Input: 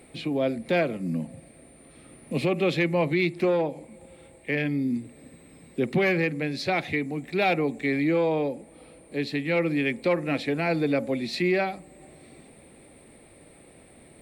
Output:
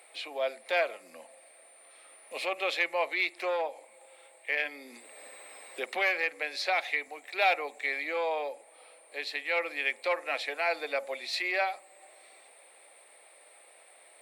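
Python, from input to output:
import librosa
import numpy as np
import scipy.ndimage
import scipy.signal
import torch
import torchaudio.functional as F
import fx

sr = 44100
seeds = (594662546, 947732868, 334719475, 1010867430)

y = scipy.signal.sosfilt(scipy.signal.butter(4, 620.0, 'highpass', fs=sr, output='sos'), x)
y = fx.band_squash(y, sr, depth_pct=40, at=(4.59, 7.08))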